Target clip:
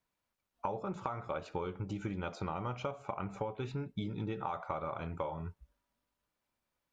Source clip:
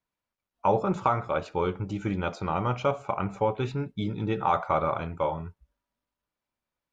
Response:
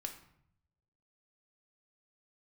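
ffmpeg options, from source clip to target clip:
-af "acompressor=threshold=-36dB:ratio=12,volume=2dB"

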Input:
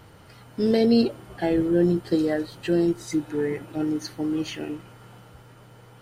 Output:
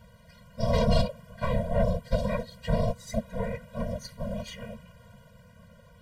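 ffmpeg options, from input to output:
ffmpeg -i in.wav -af "aeval=exprs='0.355*(cos(1*acos(clip(val(0)/0.355,-1,1)))-cos(1*PI/2))+0.141*(cos(4*acos(clip(val(0)/0.355,-1,1)))-cos(4*PI/2))':channel_layout=same,afftfilt=real='hypot(re,im)*cos(2*PI*random(0))':imag='hypot(re,im)*sin(2*PI*random(1))':win_size=512:overlap=0.75,afftfilt=real='re*eq(mod(floor(b*sr/1024/230),2),0)':imag='im*eq(mod(floor(b*sr/1024/230),2),0)':win_size=1024:overlap=0.75,volume=3dB" out.wav

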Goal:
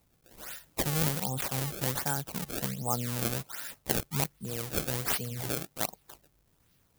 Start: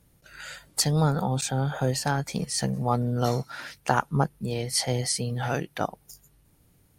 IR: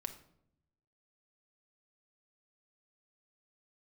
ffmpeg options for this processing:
-af "acrusher=samples=26:mix=1:aa=0.000001:lfo=1:lforange=41.6:lforate=1.3,aemphasis=mode=production:type=75kf,volume=-8.5dB"

